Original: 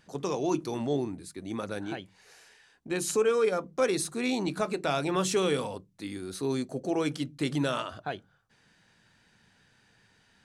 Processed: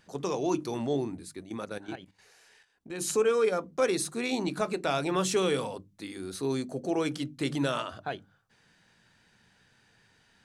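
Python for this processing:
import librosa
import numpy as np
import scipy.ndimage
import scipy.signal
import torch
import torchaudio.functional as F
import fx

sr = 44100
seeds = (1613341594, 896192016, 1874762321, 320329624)

y = fx.hum_notches(x, sr, base_hz=50, count=6)
y = fx.level_steps(y, sr, step_db=12, at=(1.42, 3.01))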